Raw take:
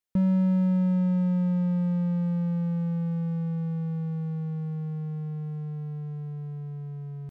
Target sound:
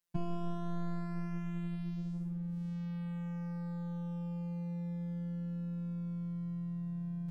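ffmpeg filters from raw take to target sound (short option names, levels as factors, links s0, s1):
-af "afreqshift=-270,afftfilt=real='hypot(re,im)*cos(PI*b)':imag='0':win_size=1024:overlap=0.75,volume=1.5"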